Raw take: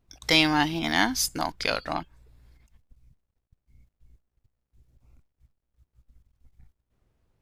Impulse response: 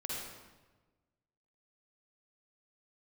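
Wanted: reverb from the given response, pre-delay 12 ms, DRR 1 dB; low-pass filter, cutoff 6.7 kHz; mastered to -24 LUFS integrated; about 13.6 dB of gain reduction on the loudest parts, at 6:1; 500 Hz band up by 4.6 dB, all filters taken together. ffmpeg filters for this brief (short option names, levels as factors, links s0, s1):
-filter_complex "[0:a]lowpass=6700,equalizer=f=500:t=o:g=6,acompressor=threshold=0.0316:ratio=6,asplit=2[s0][s1];[1:a]atrim=start_sample=2205,adelay=12[s2];[s1][s2]afir=irnorm=-1:irlink=0,volume=0.75[s3];[s0][s3]amix=inputs=2:normalize=0,volume=2.51"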